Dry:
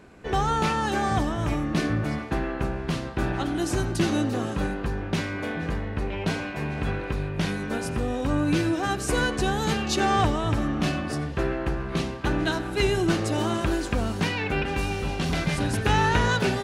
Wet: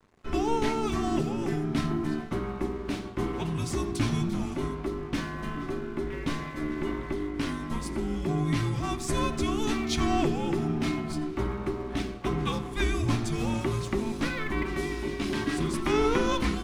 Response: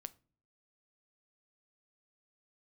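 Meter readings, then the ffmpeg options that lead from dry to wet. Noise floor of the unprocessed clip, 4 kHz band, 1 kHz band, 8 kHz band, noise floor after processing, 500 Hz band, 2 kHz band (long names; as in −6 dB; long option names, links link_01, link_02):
−33 dBFS, −5.5 dB, −6.0 dB, −4.5 dB, −38 dBFS, −2.5 dB, −7.0 dB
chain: -filter_complex "[0:a]afreqshift=-450,aeval=exprs='sgn(val(0))*max(abs(val(0))-0.00398,0)':channel_layout=same[link_01];[1:a]atrim=start_sample=2205,asetrate=66150,aresample=44100[link_02];[link_01][link_02]afir=irnorm=-1:irlink=0,volume=5.5dB"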